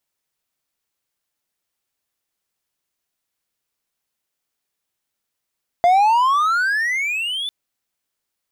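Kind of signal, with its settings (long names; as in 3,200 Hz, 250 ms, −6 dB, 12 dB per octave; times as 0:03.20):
pitch glide with a swell triangle, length 1.65 s, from 685 Hz, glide +28.5 semitones, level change −12.5 dB, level −8 dB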